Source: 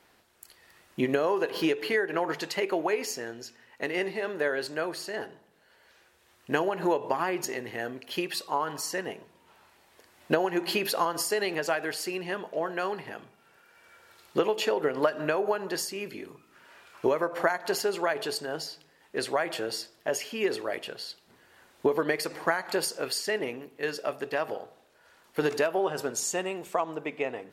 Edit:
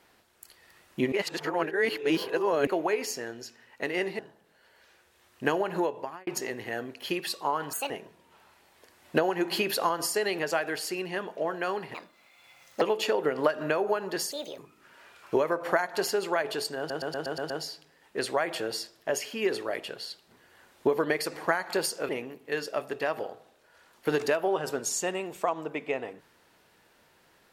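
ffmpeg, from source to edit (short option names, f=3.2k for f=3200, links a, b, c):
-filter_complex "[0:a]asplit=18[a][b][c][d][e][f][g][h][i][j][k][l][m][n][o][p][q][r];[a]atrim=end=1.122[s];[b]atrim=start=1.118:end=2.672,asetpts=PTS-STARTPTS,areverse[t];[c]atrim=start=2.668:end=4.192[u];[d]atrim=start=5.258:end=7.34,asetpts=PTS-STARTPTS,afade=t=out:st=1.512:d=0.57[v];[e]atrim=start=7.34:end=8.804,asetpts=PTS-STARTPTS,afade=t=in:d=0.004:c=hsin[w];[f]atrim=start=8.8:end=9.06,asetpts=PTS-STARTPTS,asetrate=66591,aresample=44100,atrim=end_sample=7593,asetpts=PTS-STARTPTS[x];[g]atrim=start=9.056:end=13.104[y];[h]atrim=start=13.1:end=14.4,asetpts=PTS-STARTPTS,asetrate=65709,aresample=44100[z];[i]atrim=start=14.396:end=15.904[aa];[j]atrim=start=15.9:end=16.29,asetpts=PTS-STARTPTS,asetrate=64827,aresample=44100[ab];[k]atrim=start=16.286:end=18.612[ac];[l]atrim=start=18.488:end=18.612[ad];[m]atrim=start=18.488:end=18.612[ae];[n]atrim=start=18.488:end=18.612[af];[o]atrim=start=18.488:end=18.612[ag];[p]atrim=start=18.488:end=18.612[ah];[q]atrim=start=18.488:end=23.082[ai];[r]atrim=start=23.398[aj];[s][t]acrossfade=d=0.004:c1=hsin:c2=hsin[ak];[ak][u]acrossfade=d=0.004:c1=hsin:c2=hsin[al];[v][w]concat=n=2:v=0:a=1[am];[al][am]acrossfade=d=0.004:c1=hsin:c2=hsin[an];[an][x]acrossfade=d=0.004:c1=hsin:c2=hsin[ao];[ao][y]acrossfade=d=0.004:c1=hsin:c2=hsin[ap];[ap][z]acrossfade=d=0.004:c1=hsin:c2=hsin[aq];[aq][aa]acrossfade=d=0.004:c1=hsin:c2=hsin[ar];[ar][ab]acrossfade=d=0.004:c1=hsin:c2=hsin[as];[as][ac]acrossfade=d=0.004:c1=hsin:c2=hsin[at];[at][ad]acrossfade=d=0.004:c1=hsin:c2=hsin[au];[au][ae]acrossfade=d=0.004:c1=hsin:c2=hsin[av];[av][af]acrossfade=d=0.004:c1=hsin:c2=hsin[aw];[aw][ag]acrossfade=d=0.004:c1=hsin:c2=hsin[ax];[ax][ah]acrossfade=d=0.004:c1=hsin:c2=hsin[ay];[ay][ai]acrossfade=d=0.004:c1=hsin:c2=hsin[az];[az][aj]acrossfade=d=0.004:c1=hsin:c2=hsin"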